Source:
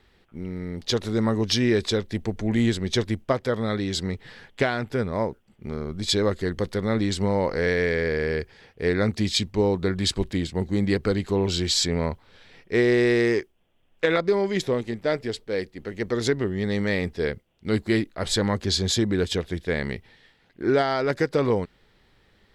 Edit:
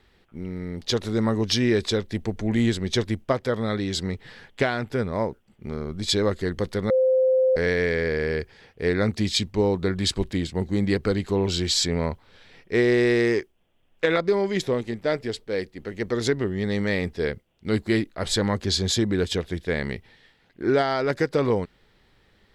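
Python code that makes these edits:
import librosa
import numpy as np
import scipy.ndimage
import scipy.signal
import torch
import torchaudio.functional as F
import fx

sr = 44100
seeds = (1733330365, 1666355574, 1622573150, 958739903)

y = fx.edit(x, sr, fx.bleep(start_s=6.9, length_s=0.66, hz=519.0, db=-16.0), tone=tone)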